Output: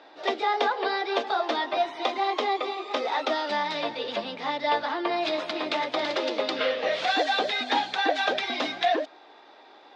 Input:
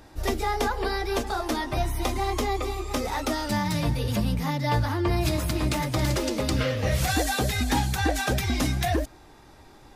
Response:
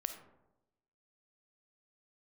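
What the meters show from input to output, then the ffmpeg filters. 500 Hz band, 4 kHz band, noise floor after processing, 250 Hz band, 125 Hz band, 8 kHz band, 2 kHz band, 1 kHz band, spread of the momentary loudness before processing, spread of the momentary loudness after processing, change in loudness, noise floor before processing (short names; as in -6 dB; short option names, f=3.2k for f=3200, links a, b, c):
+2.0 dB, +3.0 dB, -52 dBFS, -7.0 dB, -30.0 dB, -15.0 dB, +2.0 dB, +3.5 dB, 4 LU, 5 LU, -0.5 dB, -51 dBFS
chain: -af "highpass=f=340:w=0.5412,highpass=f=340:w=1.3066,equalizer=f=350:t=q:w=4:g=-4,equalizer=f=680:t=q:w=4:g=4,equalizer=f=3.6k:t=q:w=4:g=5,lowpass=f=4.2k:w=0.5412,lowpass=f=4.2k:w=1.3066,volume=2dB"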